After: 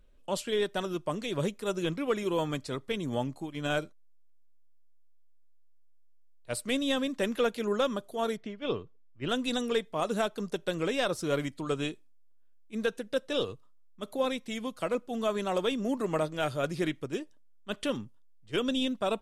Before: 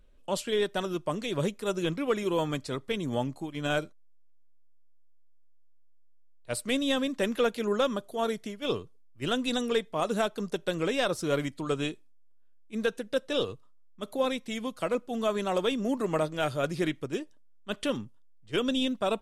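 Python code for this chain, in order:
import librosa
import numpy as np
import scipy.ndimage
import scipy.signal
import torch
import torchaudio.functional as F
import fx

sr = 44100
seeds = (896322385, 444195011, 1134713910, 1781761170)

y = fx.lowpass(x, sr, hz=3200.0, slope=12, at=(8.36, 9.28), fade=0.02)
y = F.gain(torch.from_numpy(y), -1.5).numpy()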